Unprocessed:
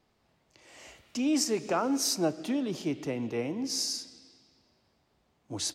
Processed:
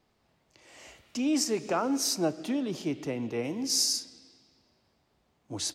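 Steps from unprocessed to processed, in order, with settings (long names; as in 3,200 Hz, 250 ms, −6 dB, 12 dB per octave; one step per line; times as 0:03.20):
0:03.43–0:03.98: high-shelf EQ 3,600 Hz → 5,400 Hz +9 dB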